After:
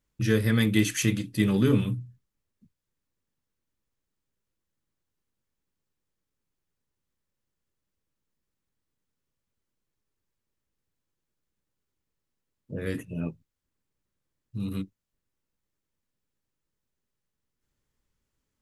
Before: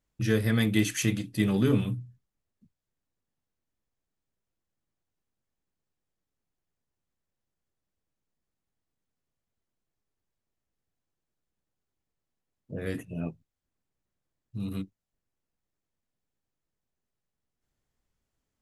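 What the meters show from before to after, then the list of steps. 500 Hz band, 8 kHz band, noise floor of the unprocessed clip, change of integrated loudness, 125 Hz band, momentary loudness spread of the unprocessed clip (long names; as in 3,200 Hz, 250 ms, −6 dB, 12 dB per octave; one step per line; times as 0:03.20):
+1.5 dB, +2.0 dB, below −85 dBFS, +2.0 dB, +2.0 dB, 14 LU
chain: parametric band 710 Hz −10 dB 0.24 octaves
level +2 dB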